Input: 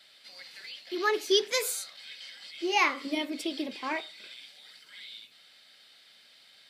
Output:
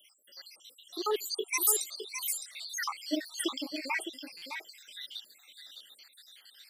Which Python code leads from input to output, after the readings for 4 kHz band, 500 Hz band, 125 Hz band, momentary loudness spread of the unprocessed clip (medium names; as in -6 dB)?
-4.5 dB, -6.5 dB, no reading, 21 LU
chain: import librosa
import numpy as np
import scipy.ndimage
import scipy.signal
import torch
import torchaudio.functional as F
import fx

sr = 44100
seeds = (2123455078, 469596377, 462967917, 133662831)

y = fx.spec_dropout(x, sr, seeds[0], share_pct=78)
y = fx.dereverb_blind(y, sr, rt60_s=0.67)
y = fx.peak_eq(y, sr, hz=340.0, db=5.5, octaves=1.1)
y = fx.rider(y, sr, range_db=3, speed_s=2.0)
y = fx.riaa(y, sr, side='recording')
y = y + 10.0 ** (-8.0 / 20.0) * np.pad(y, (int(611 * sr / 1000.0), 0))[:len(y)]
y = fx.buffer_glitch(y, sr, at_s=(4.37,), block=256, repeats=8)